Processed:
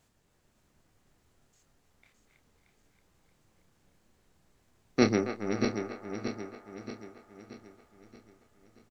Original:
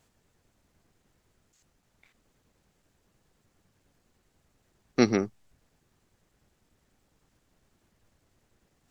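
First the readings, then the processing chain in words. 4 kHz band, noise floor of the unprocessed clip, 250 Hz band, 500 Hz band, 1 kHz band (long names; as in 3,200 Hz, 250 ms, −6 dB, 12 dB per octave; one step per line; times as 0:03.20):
+0.5 dB, −73 dBFS, 0.0 dB, +0.5 dB, +1.5 dB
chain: feedback delay that plays each chunk backwards 314 ms, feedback 69%, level −5 dB
double-tracking delay 28 ms −9 dB
on a send: feedback echo with a band-pass in the loop 275 ms, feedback 65%, band-pass 1,000 Hz, level −7.5 dB
on the sum: level −2 dB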